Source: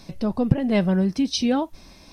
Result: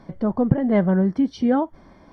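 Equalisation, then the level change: polynomial smoothing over 41 samples; low shelf 79 Hz -9.5 dB; +3.0 dB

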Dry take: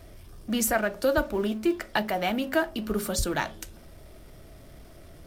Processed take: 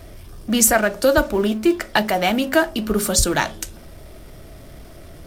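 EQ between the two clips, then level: dynamic EQ 7400 Hz, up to +6 dB, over -47 dBFS, Q 0.8; +8.0 dB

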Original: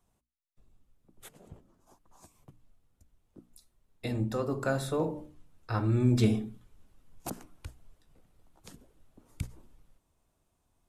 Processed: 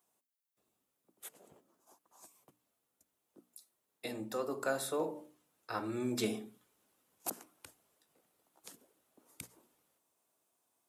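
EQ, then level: HPF 340 Hz 12 dB/oct; high shelf 9200 Hz +12 dB; -3.0 dB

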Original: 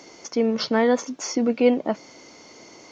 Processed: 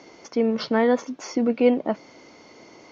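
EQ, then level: air absorption 92 m; high shelf 6600 Hz -6 dB; 0.0 dB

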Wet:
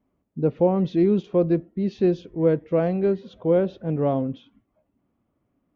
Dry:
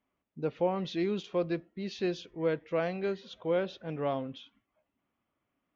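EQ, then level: tilt shelf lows +10 dB, about 890 Hz; +4.5 dB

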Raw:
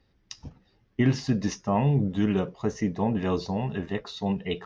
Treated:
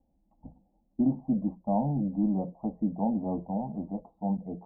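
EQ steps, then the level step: Chebyshev low-pass 830 Hz, order 4; notches 60/120/180 Hz; fixed phaser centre 410 Hz, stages 6; 0.0 dB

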